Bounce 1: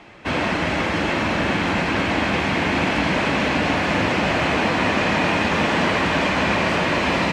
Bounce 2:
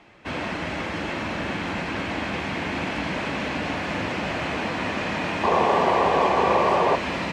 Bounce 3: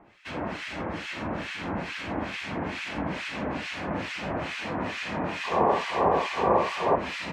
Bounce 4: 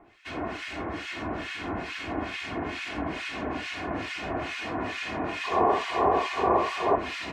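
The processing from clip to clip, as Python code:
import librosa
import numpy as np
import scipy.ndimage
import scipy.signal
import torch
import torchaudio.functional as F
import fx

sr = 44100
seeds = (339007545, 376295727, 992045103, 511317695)

y1 = fx.spec_paint(x, sr, seeds[0], shape='noise', start_s=5.43, length_s=1.53, low_hz=340.0, high_hz=1200.0, level_db=-13.0)
y1 = F.gain(torch.from_numpy(y1), -7.5).numpy()
y2 = fx.harmonic_tremolo(y1, sr, hz=2.3, depth_pct=100, crossover_hz=1500.0)
y3 = y2 + 0.53 * np.pad(y2, (int(2.8 * sr / 1000.0), 0))[:len(y2)]
y3 = F.gain(torch.from_numpy(y3), -1.5).numpy()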